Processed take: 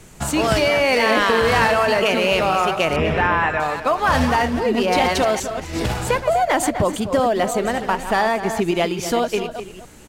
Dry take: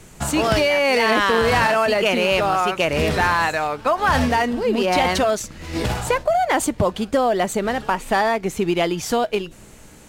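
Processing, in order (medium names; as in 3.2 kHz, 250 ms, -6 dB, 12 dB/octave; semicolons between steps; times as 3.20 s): chunks repeated in reverse 200 ms, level -10 dB; 2.96–3.60 s: Savitzky-Golay filter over 25 samples; echo from a far wall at 43 m, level -11 dB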